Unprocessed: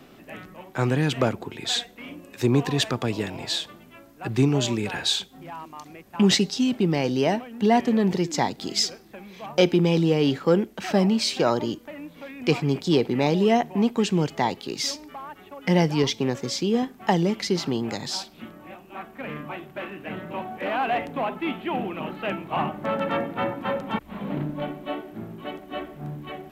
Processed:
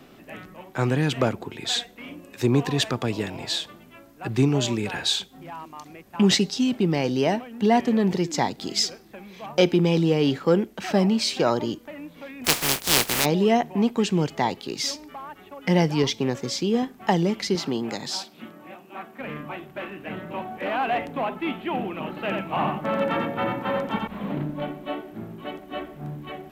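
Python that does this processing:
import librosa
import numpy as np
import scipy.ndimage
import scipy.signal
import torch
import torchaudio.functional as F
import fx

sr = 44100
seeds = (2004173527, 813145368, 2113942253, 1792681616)

y = fx.spec_flatten(x, sr, power=0.21, at=(12.44, 13.24), fade=0.02)
y = fx.highpass(y, sr, hz=150.0, slope=12, at=(17.55, 19.2))
y = fx.echo_single(y, sr, ms=87, db=-3.5, at=(22.08, 24.32))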